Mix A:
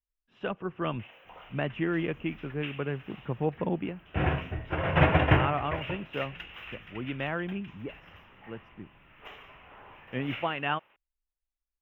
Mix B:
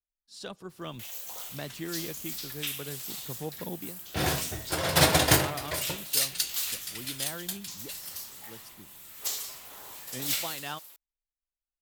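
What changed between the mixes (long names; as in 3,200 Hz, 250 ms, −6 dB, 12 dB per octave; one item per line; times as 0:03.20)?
speech −9.0 dB
second sound: add low-shelf EQ 120 Hz −10 dB
master: remove elliptic low-pass filter 2,800 Hz, stop band 40 dB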